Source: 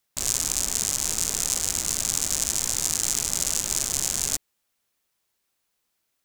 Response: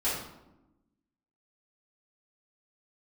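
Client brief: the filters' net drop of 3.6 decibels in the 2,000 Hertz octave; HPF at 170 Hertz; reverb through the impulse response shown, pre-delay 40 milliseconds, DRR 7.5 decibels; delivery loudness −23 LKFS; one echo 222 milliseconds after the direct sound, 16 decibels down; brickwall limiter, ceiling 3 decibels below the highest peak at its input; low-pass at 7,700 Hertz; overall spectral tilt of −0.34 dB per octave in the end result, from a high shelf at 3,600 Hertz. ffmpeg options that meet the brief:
-filter_complex "[0:a]highpass=170,lowpass=7700,equalizer=frequency=2000:width_type=o:gain=-7.5,highshelf=frequency=3600:gain=8.5,alimiter=limit=-2.5dB:level=0:latency=1,aecho=1:1:222:0.158,asplit=2[link_01][link_02];[1:a]atrim=start_sample=2205,adelay=40[link_03];[link_02][link_03]afir=irnorm=-1:irlink=0,volume=-16dB[link_04];[link_01][link_04]amix=inputs=2:normalize=0,volume=-2.5dB"

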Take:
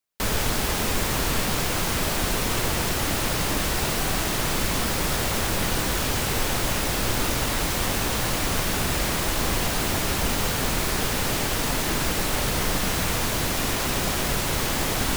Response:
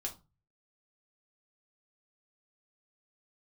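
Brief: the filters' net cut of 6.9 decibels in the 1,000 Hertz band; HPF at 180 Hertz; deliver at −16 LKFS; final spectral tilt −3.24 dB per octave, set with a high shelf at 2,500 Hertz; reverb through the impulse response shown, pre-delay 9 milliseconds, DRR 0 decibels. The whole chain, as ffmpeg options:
-filter_complex "[0:a]highpass=180,equalizer=frequency=1000:width_type=o:gain=-8,highshelf=frequency=2500:gain=-6.5,asplit=2[link_01][link_02];[1:a]atrim=start_sample=2205,adelay=9[link_03];[link_02][link_03]afir=irnorm=-1:irlink=0,volume=0.5dB[link_04];[link_01][link_04]amix=inputs=2:normalize=0,volume=10dB"

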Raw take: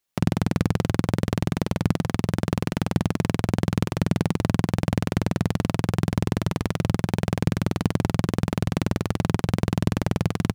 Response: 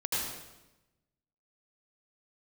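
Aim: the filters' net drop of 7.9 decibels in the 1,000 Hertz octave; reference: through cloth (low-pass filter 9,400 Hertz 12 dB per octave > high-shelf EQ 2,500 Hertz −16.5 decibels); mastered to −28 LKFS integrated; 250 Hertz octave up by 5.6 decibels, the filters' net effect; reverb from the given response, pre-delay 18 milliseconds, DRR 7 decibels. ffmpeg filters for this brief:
-filter_complex "[0:a]equalizer=frequency=250:width_type=o:gain=8.5,equalizer=frequency=1000:width_type=o:gain=-8.5,asplit=2[link_01][link_02];[1:a]atrim=start_sample=2205,adelay=18[link_03];[link_02][link_03]afir=irnorm=-1:irlink=0,volume=-14dB[link_04];[link_01][link_04]amix=inputs=2:normalize=0,lowpass=9400,highshelf=frequency=2500:gain=-16.5,volume=-7.5dB"

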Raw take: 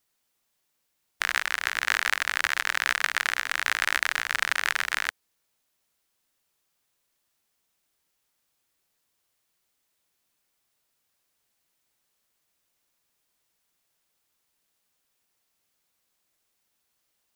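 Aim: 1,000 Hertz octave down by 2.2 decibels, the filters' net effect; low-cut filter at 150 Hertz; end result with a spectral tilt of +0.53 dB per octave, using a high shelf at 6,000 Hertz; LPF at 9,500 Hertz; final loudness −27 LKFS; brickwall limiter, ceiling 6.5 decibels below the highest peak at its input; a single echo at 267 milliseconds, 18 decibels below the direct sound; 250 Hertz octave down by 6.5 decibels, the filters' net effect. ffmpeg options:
ffmpeg -i in.wav -af "highpass=150,lowpass=9500,equalizer=frequency=250:width_type=o:gain=-8.5,equalizer=frequency=1000:width_type=o:gain=-3,highshelf=frequency=6000:gain=4.5,alimiter=limit=-8.5dB:level=0:latency=1,aecho=1:1:267:0.126,volume=1.5dB" out.wav

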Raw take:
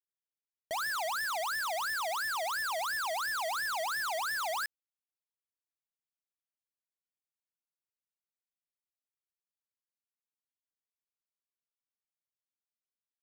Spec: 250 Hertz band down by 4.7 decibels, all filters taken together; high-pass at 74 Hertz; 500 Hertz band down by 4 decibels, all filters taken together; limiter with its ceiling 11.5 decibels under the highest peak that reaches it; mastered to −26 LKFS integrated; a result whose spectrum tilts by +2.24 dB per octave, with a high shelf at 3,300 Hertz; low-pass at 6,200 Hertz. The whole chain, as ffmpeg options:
ffmpeg -i in.wav -af "highpass=74,lowpass=6200,equalizer=frequency=250:width_type=o:gain=-4.5,equalizer=frequency=500:width_type=o:gain=-6,highshelf=frequency=3300:gain=3,volume=18.5dB,alimiter=limit=-22dB:level=0:latency=1" out.wav

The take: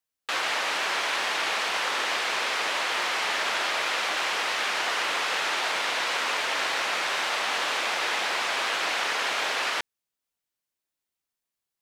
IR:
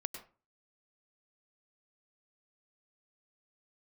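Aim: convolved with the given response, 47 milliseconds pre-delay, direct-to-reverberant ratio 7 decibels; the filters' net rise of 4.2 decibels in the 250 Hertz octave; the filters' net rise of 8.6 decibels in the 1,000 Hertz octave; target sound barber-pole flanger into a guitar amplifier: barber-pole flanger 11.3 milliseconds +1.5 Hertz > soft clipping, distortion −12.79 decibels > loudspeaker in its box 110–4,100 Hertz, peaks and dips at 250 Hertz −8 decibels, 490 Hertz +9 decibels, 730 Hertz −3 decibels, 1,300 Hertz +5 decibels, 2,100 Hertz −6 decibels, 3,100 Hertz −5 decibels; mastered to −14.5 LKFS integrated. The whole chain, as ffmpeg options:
-filter_complex "[0:a]equalizer=frequency=250:width_type=o:gain=8,equalizer=frequency=1000:width_type=o:gain=8.5,asplit=2[link_01][link_02];[1:a]atrim=start_sample=2205,adelay=47[link_03];[link_02][link_03]afir=irnorm=-1:irlink=0,volume=-6.5dB[link_04];[link_01][link_04]amix=inputs=2:normalize=0,asplit=2[link_05][link_06];[link_06]adelay=11.3,afreqshift=1.5[link_07];[link_05][link_07]amix=inputs=2:normalize=1,asoftclip=threshold=-24dB,highpass=110,equalizer=frequency=250:width_type=q:width=4:gain=-8,equalizer=frequency=490:width_type=q:width=4:gain=9,equalizer=frequency=730:width_type=q:width=4:gain=-3,equalizer=frequency=1300:width_type=q:width=4:gain=5,equalizer=frequency=2100:width_type=q:width=4:gain=-6,equalizer=frequency=3100:width_type=q:width=4:gain=-5,lowpass=frequency=4100:width=0.5412,lowpass=frequency=4100:width=1.3066,volume=13.5dB"

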